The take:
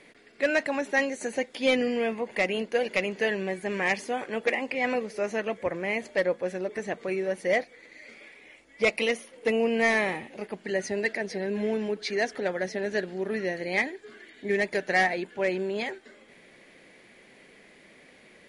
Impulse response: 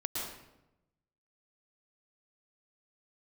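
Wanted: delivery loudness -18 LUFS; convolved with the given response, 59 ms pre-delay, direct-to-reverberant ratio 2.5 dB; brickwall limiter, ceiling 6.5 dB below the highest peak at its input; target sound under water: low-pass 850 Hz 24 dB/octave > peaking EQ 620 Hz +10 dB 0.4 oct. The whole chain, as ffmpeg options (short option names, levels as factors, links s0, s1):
-filter_complex "[0:a]alimiter=limit=0.106:level=0:latency=1,asplit=2[s0][s1];[1:a]atrim=start_sample=2205,adelay=59[s2];[s1][s2]afir=irnorm=-1:irlink=0,volume=0.501[s3];[s0][s3]amix=inputs=2:normalize=0,lowpass=f=850:w=0.5412,lowpass=f=850:w=1.3066,equalizer=f=620:t=o:w=0.4:g=10,volume=2.66"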